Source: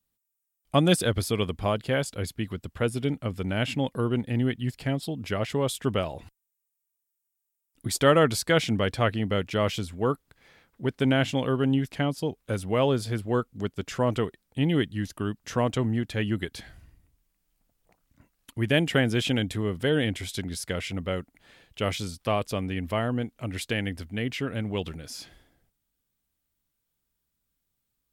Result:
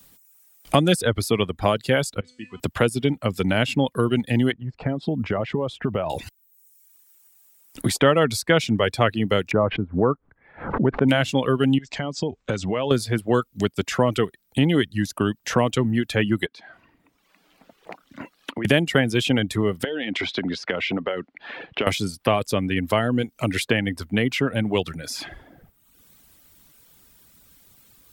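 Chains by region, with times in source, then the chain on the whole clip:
2.2–2.6 Chebyshev low-pass 8600 Hz, order 4 + resonator 250 Hz, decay 0.96 s, mix 90%
4.52–6.1 LPF 1300 Hz + compressor 12:1, threshold -30 dBFS + short-mantissa float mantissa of 8-bit
9.51–11.09 LPF 1300 Hz 24 dB/oct + backwards sustainer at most 120 dB/s
11.78–12.91 steep low-pass 7800 Hz 72 dB/oct + compressor 4:1, threshold -35 dBFS
16.46–18.65 three-band isolator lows -23 dB, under 190 Hz, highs -19 dB, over 4100 Hz + compressor 3:1, threshold -51 dBFS
19.84–21.87 low-pass opened by the level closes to 2200 Hz, open at -21 dBFS + three-band isolator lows -23 dB, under 190 Hz, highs -22 dB, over 5600 Hz + compressor, threshold -34 dBFS
whole clip: reverb removal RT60 0.76 s; low shelf 67 Hz -9 dB; three-band squash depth 70%; gain +7 dB

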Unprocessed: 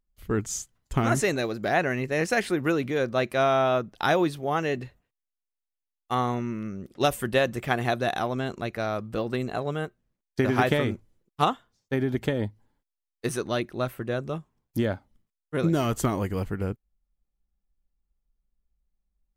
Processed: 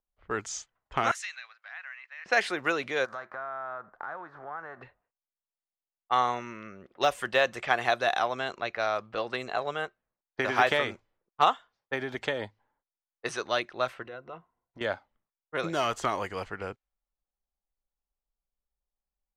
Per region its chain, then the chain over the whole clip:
1.11–2.26 block floating point 7-bit + Bessel high-pass 2300 Hz, order 4 + compressor 4:1, threshold -36 dBFS
3.04–4.81 spectral whitening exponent 0.6 + resonant high shelf 2000 Hz -10 dB, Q 3 + compressor 10:1, threshold -35 dBFS
14.02–14.81 ripple EQ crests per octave 2, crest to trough 9 dB + compressor, threshold -34 dBFS
whole clip: low-pass opened by the level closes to 880 Hz, open at -23 dBFS; de-esser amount 70%; three-band isolator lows -19 dB, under 550 Hz, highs -17 dB, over 7500 Hz; gain +3.5 dB

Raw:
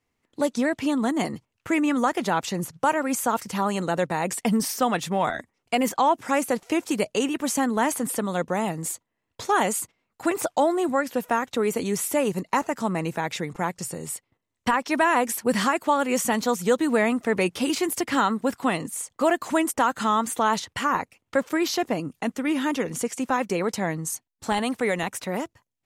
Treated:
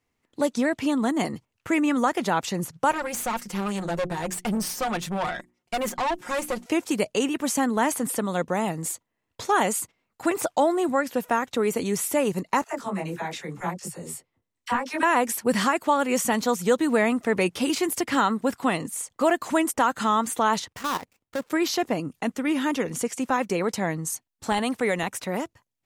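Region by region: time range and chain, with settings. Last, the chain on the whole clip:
2.91–6.66 notches 60/120/180/240/300/360 Hz + comb 5.6 ms, depth 74% + tube stage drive 22 dB, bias 0.7
12.64–15.03 dispersion lows, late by 52 ms, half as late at 660 Hz + detuned doubles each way 28 cents
20.68–21.5 switching dead time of 0.14 ms + level quantiser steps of 13 dB
whole clip: dry

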